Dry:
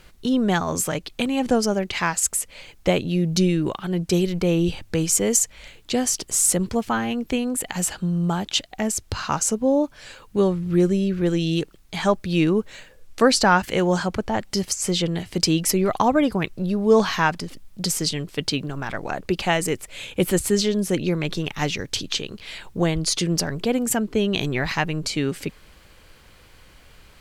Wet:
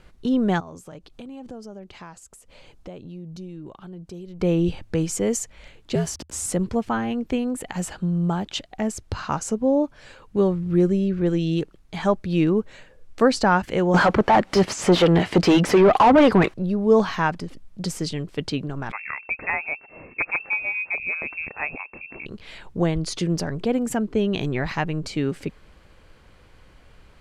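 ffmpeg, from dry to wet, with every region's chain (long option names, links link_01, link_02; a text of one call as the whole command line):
ffmpeg -i in.wav -filter_complex "[0:a]asettb=1/sr,asplit=3[link_01][link_02][link_03];[link_01]atrim=end=0.604[link_04];[link_02]atrim=start=0.6:end=4.4,asetpts=PTS-STARTPTS,afade=type=in:duration=0.004:curve=qsin,afade=type=out:start_time=3.796:duration=0.004:curve=qsin,equalizer=frequency=2000:width_type=o:width=0.78:gain=-6,acompressor=threshold=-40dB:ratio=3:attack=3.2:release=140:knee=1:detection=peak[link_05];[link_03]atrim=start=4.396[link_06];[link_04][link_05]acrossfade=duration=0.004:curve1=hsin:curve2=qsin[link_07];[link_07][link_06]acrossfade=duration=0.004:curve1=qsin:curve2=hsin,asettb=1/sr,asplit=3[link_08][link_09][link_10];[link_08]atrim=end=5.954[link_11];[link_09]atrim=start=5.95:end=6.46,asetpts=PTS-STARTPTS,afade=type=in:duration=0.004:curve=qsin,afade=type=out:start_time=0.506:duration=0.004:curve=qsin,aeval=exprs='val(0)*gte(abs(val(0)),0.0224)':channel_layout=same,afreqshift=-85[link_12];[link_10]atrim=start=6.456[link_13];[link_11][link_12]acrossfade=duration=0.004:curve1=hsin:curve2=qsin[link_14];[link_14][link_13]acrossfade=duration=0.004:curve1=qsin:curve2=hsin,asettb=1/sr,asplit=3[link_15][link_16][link_17];[link_15]atrim=end=13.944[link_18];[link_16]atrim=start=13.94:end=16.54,asetpts=PTS-STARTPTS,afade=type=in:duration=0.004:curve=qsin,afade=type=out:start_time=2.596:duration=0.004:curve=qsin,acrossover=split=420[link_19][link_20];[link_19]aeval=exprs='val(0)*(1-0.5/2+0.5/2*cos(2*PI*4.1*n/s))':channel_layout=same[link_21];[link_20]aeval=exprs='val(0)*(1-0.5/2-0.5/2*cos(2*PI*4.1*n/s))':channel_layout=same[link_22];[link_21][link_22]amix=inputs=2:normalize=0,asplit=2[link_23][link_24];[link_24]highpass=frequency=720:poles=1,volume=30dB,asoftclip=type=tanh:threshold=-4.5dB[link_25];[link_23][link_25]amix=inputs=2:normalize=0,lowpass=frequency=2200:poles=1,volume=-6dB[link_26];[link_17]atrim=start=16.536[link_27];[link_18][link_26]acrossfade=duration=0.004:curve1=hsin:curve2=qsin[link_28];[link_28][link_27]acrossfade=duration=0.004:curve1=qsin:curve2=hsin,asettb=1/sr,asplit=3[link_29][link_30][link_31];[link_29]atrim=end=18.924[link_32];[link_30]atrim=start=18.92:end=22.26,asetpts=PTS-STARTPTS,afade=type=in:duration=0.004:curve=qsin,afade=type=out:start_time=3.336:duration=0.004:curve=qsin,aeval=exprs='(mod(2.82*val(0)+1,2)-1)/2.82':channel_layout=same,lowpass=frequency=2300:width_type=q:width=0.5098,lowpass=frequency=2300:width_type=q:width=0.6013,lowpass=frequency=2300:width_type=q:width=0.9,lowpass=frequency=2300:width_type=q:width=2.563,afreqshift=-2700[link_33];[link_31]atrim=start=22.256[link_34];[link_32][link_33]acrossfade=duration=0.004:curve1=hsin:curve2=qsin[link_35];[link_35][link_34]acrossfade=duration=0.004:curve1=qsin:curve2=hsin,lowpass=11000,highshelf=frequency=2200:gain=-10" out.wav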